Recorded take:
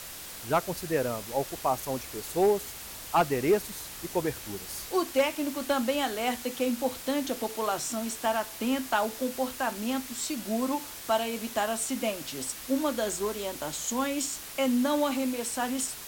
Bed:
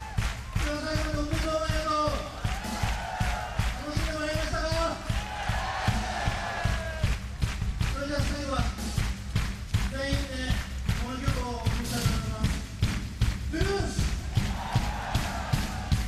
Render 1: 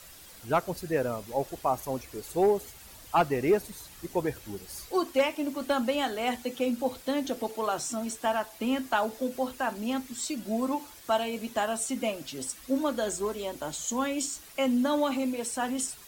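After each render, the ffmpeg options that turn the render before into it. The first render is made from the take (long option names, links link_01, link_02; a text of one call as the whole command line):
ffmpeg -i in.wav -af "afftdn=noise_reduction=10:noise_floor=-42" out.wav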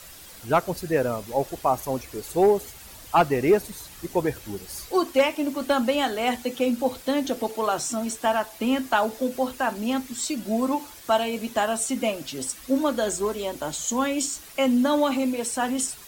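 ffmpeg -i in.wav -af "volume=5dB" out.wav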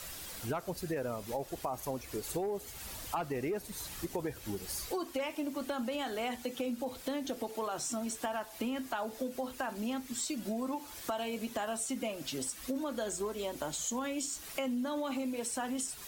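ffmpeg -i in.wav -af "alimiter=limit=-16dB:level=0:latency=1:release=24,acompressor=threshold=-35dB:ratio=4" out.wav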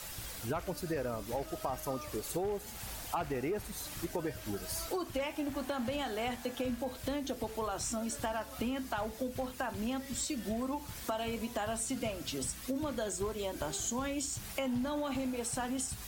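ffmpeg -i in.wav -i bed.wav -filter_complex "[1:a]volume=-20dB[link_01];[0:a][link_01]amix=inputs=2:normalize=0" out.wav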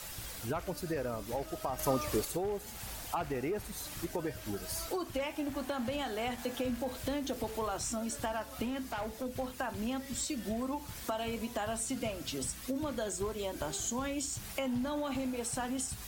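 ffmpeg -i in.wav -filter_complex "[0:a]asettb=1/sr,asplit=3[link_01][link_02][link_03];[link_01]atrim=end=1.794[link_04];[link_02]atrim=start=1.79:end=2.25,asetpts=PTS-STARTPTS,afade=type=in:duration=0.004:curve=qsin,afade=type=out:start_time=0.456:duration=0.004:curve=qsin,acontrast=69[link_05];[link_03]atrim=start=2.246[link_06];[link_04][link_05]acrossfade=duration=0.004:curve1=hsin:curve2=qsin[link_07];[link_07][link_06]acrossfade=duration=0.004:curve1=qsin:curve2=hsin,asettb=1/sr,asplit=3[link_08][link_09][link_10];[link_08]atrim=end=6.384[link_11];[link_09]atrim=start=6.38:end=7.77,asetpts=PTS-STARTPTS,afade=type=in:duration=0.004:curve=qsin,afade=type=out:start_time=1.386:duration=0.004:curve=qsin,aeval=exprs='val(0)+0.5*0.00447*sgn(val(0))':channel_layout=same[link_12];[link_10]atrim=start=7.766[link_13];[link_11][link_12]acrossfade=duration=0.004:curve1=hsin:curve2=qsin[link_14];[link_14][link_13]acrossfade=duration=0.004:curve1=qsin:curve2=hsin,asettb=1/sr,asplit=3[link_15][link_16][link_17];[link_15]atrim=end=8.644[link_18];[link_16]atrim=start=8.64:end=9.26,asetpts=PTS-STARTPTS,afade=type=in:duration=0.004:curve=qsin,afade=type=out:start_time=0.616:duration=0.004:curve=qsin,volume=32.5dB,asoftclip=hard,volume=-32.5dB[link_19];[link_17]atrim=start=9.256[link_20];[link_18][link_19]acrossfade=duration=0.004:curve1=hsin:curve2=qsin[link_21];[link_21][link_20]acrossfade=duration=0.004:curve1=qsin:curve2=hsin" out.wav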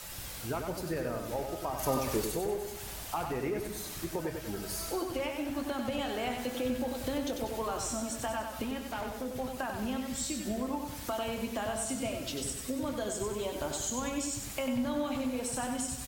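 ffmpeg -i in.wav -filter_complex "[0:a]asplit=2[link_01][link_02];[link_02]adelay=24,volume=-12.5dB[link_03];[link_01][link_03]amix=inputs=2:normalize=0,aecho=1:1:95|190|285|380|475|570:0.531|0.26|0.127|0.0625|0.0306|0.015" out.wav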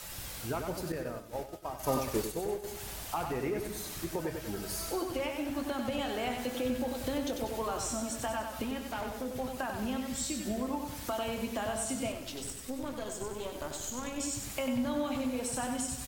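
ffmpeg -i in.wav -filter_complex "[0:a]asettb=1/sr,asplit=3[link_01][link_02][link_03];[link_01]atrim=end=0.924[link_04];[link_02]atrim=start=0.92:end=2.64,asetpts=PTS-STARTPTS,afade=type=in:duration=0.004:curve=qsin,afade=type=out:start_time=1.716:duration=0.004:curve=qsin,agate=range=-33dB:threshold=-31dB:ratio=3:release=100:detection=peak[link_05];[link_03]atrim=start=2.636[link_06];[link_04][link_05]acrossfade=duration=0.004:curve1=hsin:curve2=qsin[link_07];[link_07][link_06]acrossfade=duration=0.004:curve1=qsin:curve2=hsin,asettb=1/sr,asplit=3[link_08][link_09][link_10];[link_08]atrim=end=12.124[link_11];[link_09]atrim=start=12.12:end=14.2,asetpts=PTS-STARTPTS,afade=type=in:duration=0.004:curve=qsin,afade=type=out:start_time=2.076:duration=0.004:curve=qsin,aeval=exprs='(tanh(28.2*val(0)+0.75)-tanh(0.75))/28.2':channel_layout=same[link_12];[link_10]atrim=start=14.196[link_13];[link_11][link_12]acrossfade=duration=0.004:curve1=hsin:curve2=qsin[link_14];[link_14][link_13]acrossfade=duration=0.004:curve1=qsin:curve2=hsin" out.wav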